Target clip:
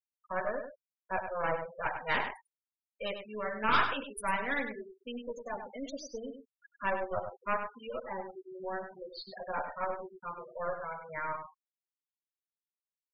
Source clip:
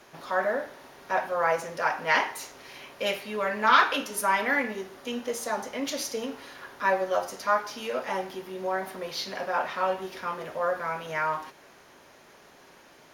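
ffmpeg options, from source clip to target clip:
ffmpeg -i in.wav -filter_complex "[0:a]aeval=exprs='0.473*(cos(1*acos(clip(val(0)/0.473,-1,1)))-cos(1*PI/2))+0.0668*(cos(6*acos(clip(val(0)/0.473,-1,1)))-cos(6*PI/2))':channel_layout=same,afftfilt=real='re*gte(hypot(re,im),0.0631)':imag='im*gte(hypot(re,im),0.0631)':win_size=1024:overlap=0.75,asplit=2[link_01][link_02];[link_02]adelay=99.13,volume=-8dB,highshelf=frequency=4000:gain=-2.23[link_03];[link_01][link_03]amix=inputs=2:normalize=0,volume=-8.5dB" out.wav

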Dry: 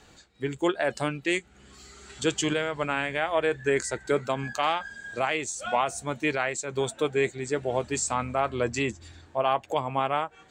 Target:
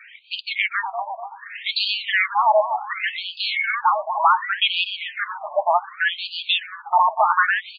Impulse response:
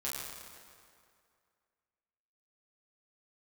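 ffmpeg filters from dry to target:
-filter_complex "[0:a]asplit=2[link_01][link_02];[link_02]highpass=frequency=720:poles=1,volume=18dB,asoftclip=type=tanh:threshold=-12dB[link_03];[link_01][link_03]amix=inputs=2:normalize=0,lowpass=frequency=3700:poles=1,volume=-6dB,asplit=2[link_04][link_05];[link_05]adelay=328,lowpass=frequency=1200:poles=1,volume=-6.5dB,asplit=2[link_06][link_07];[link_07]adelay=328,lowpass=frequency=1200:poles=1,volume=0.54,asplit=2[link_08][link_09];[link_09]adelay=328,lowpass=frequency=1200:poles=1,volume=0.54,asplit=2[link_10][link_11];[link_11]adelay=328,lowpass=frequency=1200:poles=1,volume=0.54,asplit=2[link_12][link_13];[link_13]adelay=328,lowpass=frequency=1200:poles=1,volume=0.54,asplit=2[link_14][link_15];[link_15]adelay=328,lowpass=frequency=1200:poles=1,volume=0.54,asplit=2[link_16][link_17];[link_17]adelay=328,lowpass=frequency=1200:poles=1,volume=0.54[link_18];[link_06][link_08][link_10][link_12][link_14][link_16][link_18]amix=inputs=7:normalize=0[link_19];[link_04][link_19]amix=inputs=2:normalize=0,asetrate=59535,aresample=44100,afftfilt=real='re*between(b*sr/1024,790*pow(3500/790,0.5+0.5*sin(2*PI*0.67*pts/sr))/1.41,790*pow(3500/790,0.5+0.5*sin(2*PI*0.67*pts/sr))*1.41)':imag='im*between(b*sr/1024,790*pow(3500/790,0.5+0.5*sin(2*PI*0.67*pts/sr))/1.41,790*pow(3500/790,0.5+0.5*sin(2*PI*0.67*pts/sr))*1.41)':win_size=1024:overlap=0.75,volume=6.5dB"

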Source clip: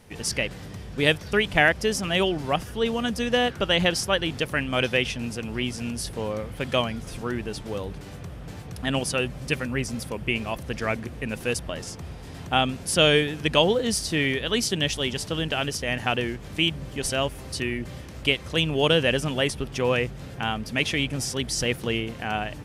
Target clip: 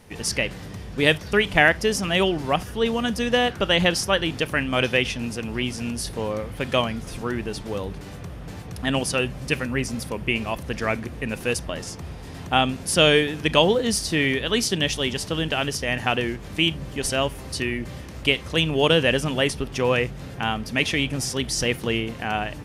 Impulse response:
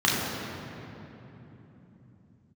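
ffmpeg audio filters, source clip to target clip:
-filter_complex "[0:a]bandreject=frequency=7700:width=27,asplit=2[link_01][link_02];[1:a]atrim=start_sample=2205,atrim=end_sample=3528[link_03];[link_02][link_03]afir=irnorm=-1:irlink=0,volume=-31dB[link_04];[link_01][link_04]amix=inputs=2:normalize=0,volume=2dB"

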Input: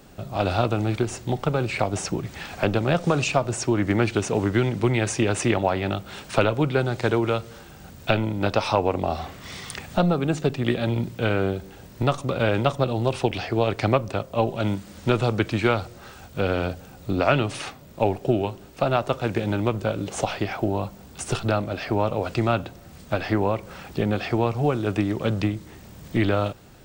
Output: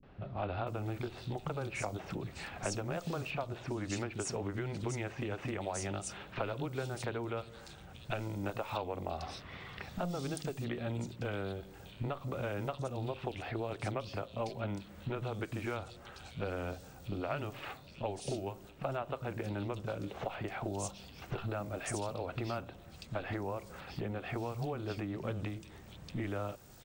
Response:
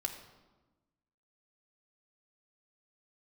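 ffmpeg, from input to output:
-filter_complex "[0:a]acompressor=threshold=-25dB:ratio=6,acrossover=split=250|3300[link_01][link_02][link_03];[link_02]adelay=30[link_04];[link_03]adelay=670[link_05];[link_01][link_04][link_05]amix=inputs=3:normalize=0,volume=-7.5dB"

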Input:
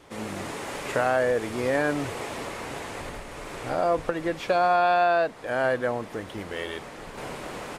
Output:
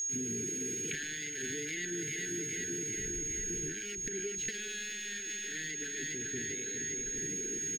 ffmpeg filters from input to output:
ffmpeg -i in.wav -filter_complex "[0:a]afwtdn=0.0398,bandreject=frequency=60:width_type=h:width=6,bandreject=frequency=120:width_type=h:width=6,bandreject=frequency=180:width_type=h:width=6,bandreject=frequency=240:width_type=h:width=6,bandreject=frequency=300:width_type=h:width=6,asoftclip=type=hard:threshold=-19.5dB,aecho=1:1:400|800|1200|1600|2000|2400|2800:0.376|0.218|0.126|0.0733|0.0425|0.0247|0.0143,acrossover=split=820|2000[link_01][link_02][link_03];[link_01]acompressor=threshold=-39dB:ratio=4[link_04];[link_02]acompressor=threshold=-43dB:ratio=4[link_05];[link_03]acompressor=threshold=-44dB:ratio=4[link_06];[link_04][link_05][link_06]amix=inputs=3:normalize=0,asetrate=52444,aresample=44100,atempo=0.840896,aeval=exprs='val(0)+0.01*sin(2*PI*6600*n/s)':channel_layout=same,acompressor=threshold=-39dB:ratio=6,asuperstop=centerf=830:order=20:qfactor=0.77,lowshelf=frequency=100:gain=-6,volume=8dB" out.wav

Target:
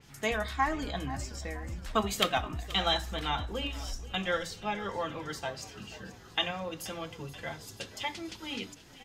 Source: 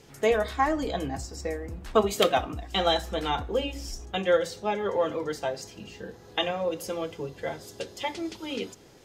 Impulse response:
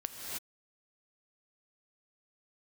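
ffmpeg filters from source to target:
-filter_complex "[0:a]equalizer=frequency=460:width_type=o:width=1.3:gain=-12.5,asplit=2[link_01][link_02];[link_02]asplit=6[link_03][link_04][link_05][link_06][link_07][link_08];[link_03]adelay=480,afreqshift=-37,volume=-17.5dB[link_09];[link_04]adelay=960,afreqshift=-74,volume=-21.5dB[link_10];[link_05]adelay=1440,afreqshift=-111,volume=-25.5dB[link_11];[link_06]adelay=1920,afreqshift=-148,volume=-29.5dB[link_12];[link_07]adelay=2400,afreqshift=-185,volume=-33.6dB[link_13];[link_08]adelay=2880,afreqshift=-222,volume=-37.6dB[link_14];[link_09][link_10][link_11][link_12][link_13][link_14]amix=inputs=6:normalize=0[link_15];[link_01][link_15]amix=inputs=2:normalize=0,adynamicequalizer=threshold=0.00447:dfrequency=4100:dqfactor=0.7:tfrequency=4100:tqfactor=0.7:attack=5:release=100:ratio=0.375:range=2.5:mode=cutabove:tftype=highshelf"

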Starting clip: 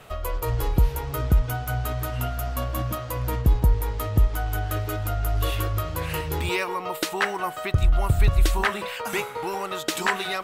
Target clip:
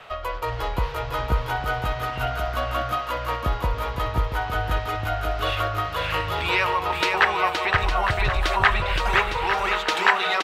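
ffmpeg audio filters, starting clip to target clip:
ffmpeg -i in.wav -filter_complex "[0:a]acrossover=split=570 4700:gain=0.224 1 0.1[link_01][link_02][link_03];[link_01][link_02][link_03]amix=inputs=3:normalize=0,aecho=1:1:520|858|1078|1221|1313:0.631|0.398|0.251|0.158|0.1,volume=6dB" out.wav

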